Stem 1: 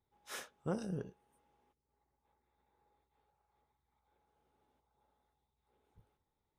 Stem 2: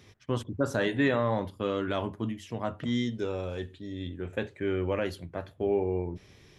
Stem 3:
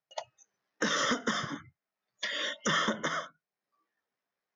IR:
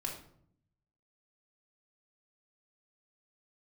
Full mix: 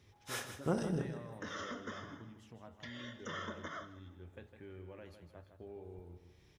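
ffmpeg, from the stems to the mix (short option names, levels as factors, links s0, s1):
-filter_complex "[0:a]volume=1.26,asplit=3[s0][s1][s2];[s1]volume=0.355[s3];[s2]volume=0.398[s4];[1:a]equalizer=f=67:w=1.3:g=10,acompressor=threshold=0.00501:ratio=2,volume=0.266,asplit=3[s5][s6][s7];[s6]volume=0.355[s8];[2:a]highshelf=f=3500:g=-9.5,adelay=600,volume=0.355,asplit=3[s9][s10][s11];[s10]volume=0.237[s12];[s11]volume=0.119[s13];[s7]apad=whole_len=227273[s14];[s9][s14]sidechaincompress=threshold=0.00178:ratio=8:attack=24:release=521[s15];[3:a]atrim=start_sample=2205[s16];[s3][s12]amix=inputs=2:normalize=0[s17];[s17][s16]afir=irnorm=-1:irlink=0[s18];[s4][s8][s13]amix=inputs=3:normalize=0,aecho=0:1:157|314|471|628|785:1|0.39|0.152|0.0593|0.0231[s19];[s0][s5][s15][s18][s19]amix=inputs=5:normalize=0"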